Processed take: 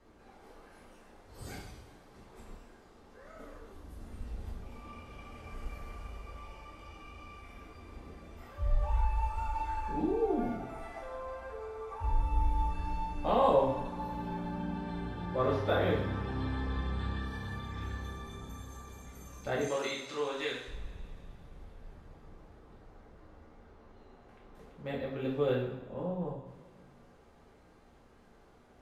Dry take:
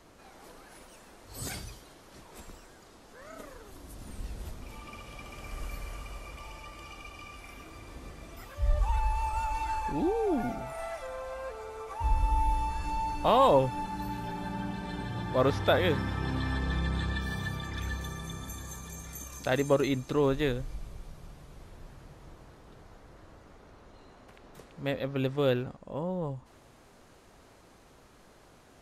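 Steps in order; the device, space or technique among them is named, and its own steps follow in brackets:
0:19.61–0:20.68: meter weighting curve ITU-R 468
through cloth (high-shelf EQ 3,400 Hz −12 dB)
coupled-rooms reverb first 0.61 s, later 2.8 s, from −20 dB, DRR −5 dB
level −9 dB

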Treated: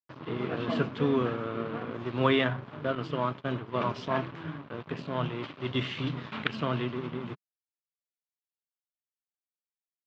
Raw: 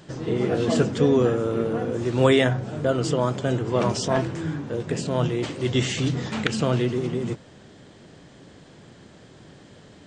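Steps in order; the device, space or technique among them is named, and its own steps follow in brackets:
blown loudspeaker (dead-zone distortion −34.5 dBFS; loudspeaker in its box 150–3,500 Hz, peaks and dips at 200 Hz −6 dB, 340 Hz −6 dB, 490 Hz −8 dB, 760 Hz −6 dB, 1,100 Hz +4 dB, 1,900 Hz −3 dB)
0:02.95–0:03.86: downward expander −29 dBFS
level −2 dB

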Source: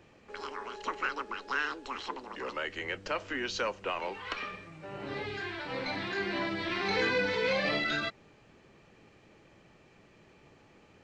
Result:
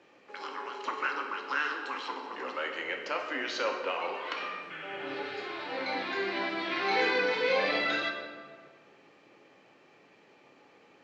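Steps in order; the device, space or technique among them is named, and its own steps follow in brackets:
supermarket ceiling speaker (band-pass filter 310–6,000 Hz; convolution reverb RT60 1.7 s, pre-delay 3 ms, DRR 2 dB)
healed spectral selection 0:04.73–0:05.62, 1,200–3,500 Hz after

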